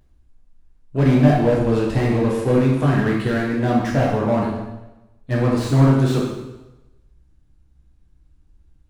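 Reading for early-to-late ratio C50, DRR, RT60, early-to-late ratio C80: 1.5 dB, -4.5 dB, 1.0 s, 4.0 dB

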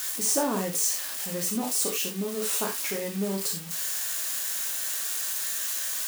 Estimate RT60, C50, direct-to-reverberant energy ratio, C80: no single decay rate, 7.0 dB, 1.0 dB, 14.5 dB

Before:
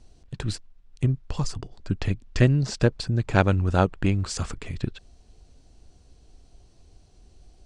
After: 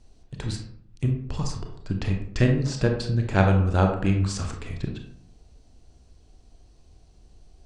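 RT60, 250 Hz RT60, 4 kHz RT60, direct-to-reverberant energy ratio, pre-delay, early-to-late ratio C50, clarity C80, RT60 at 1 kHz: 0.65 s, 0.85 s, 0.35 s, 2.5 dB, 26 ms, 6.0 dB, 10.0 dB, 0.60 s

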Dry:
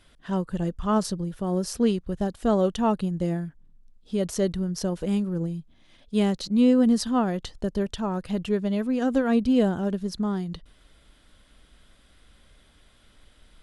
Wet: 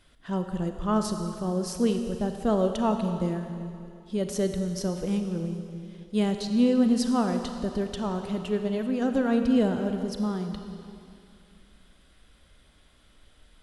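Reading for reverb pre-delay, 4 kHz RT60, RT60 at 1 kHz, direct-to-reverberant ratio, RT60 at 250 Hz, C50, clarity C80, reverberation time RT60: 30 ms, 2.4 s, 2.6 s, 6.0 dB, 2.6 s, 6.5 dB, 7.0 dB, 2.5 s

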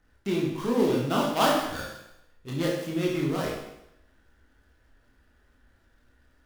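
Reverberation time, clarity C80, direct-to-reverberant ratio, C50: 0.85 s, 5.0 dB, -4.0 dB, 1.5 dB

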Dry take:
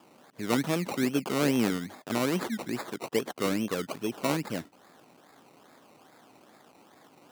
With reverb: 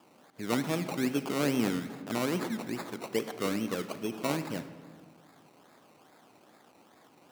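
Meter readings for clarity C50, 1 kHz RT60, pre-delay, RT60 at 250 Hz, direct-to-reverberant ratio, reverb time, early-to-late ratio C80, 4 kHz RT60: 11.0 dB, 1.5 s, 35 ms, 2.0 s, 10.0 dB, 1.6 s, 12.5 dB, 0.95 s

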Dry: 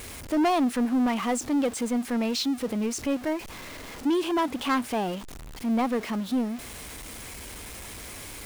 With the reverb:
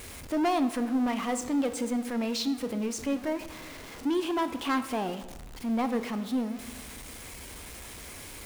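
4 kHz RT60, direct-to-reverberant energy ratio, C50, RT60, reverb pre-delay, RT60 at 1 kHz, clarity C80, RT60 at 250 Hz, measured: 0.75 s, 9.5 dB, 12.0 dB, 1.2 s, 9 ms, 1.1 s, 14.0 dB, 1.3 s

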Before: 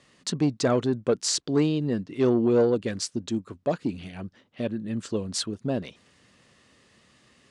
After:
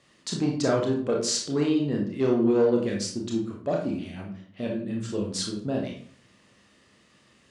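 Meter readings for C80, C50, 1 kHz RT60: 9.5 dB, 4.5 dB, 0.50 s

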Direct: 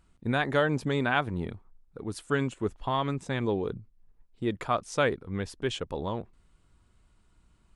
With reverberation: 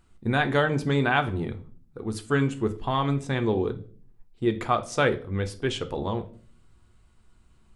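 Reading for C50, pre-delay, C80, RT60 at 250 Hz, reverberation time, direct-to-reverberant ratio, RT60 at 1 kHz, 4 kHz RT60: 15.5 dB, 3 ms, 21.0 dB, 0.75 s, 0.45 s, 7.0 dB, 0.40 s, 0.35 s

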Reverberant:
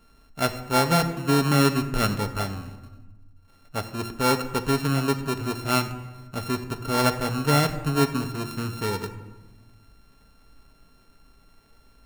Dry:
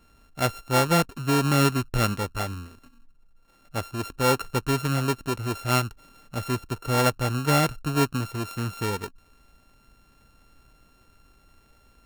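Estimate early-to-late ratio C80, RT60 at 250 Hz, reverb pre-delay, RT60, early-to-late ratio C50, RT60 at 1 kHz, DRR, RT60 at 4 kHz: 13.0 dB, 1.8 s, 5 ms, 1.2 s, 11.5 dB, 1.1 s, 6.0 dB, 0.75 s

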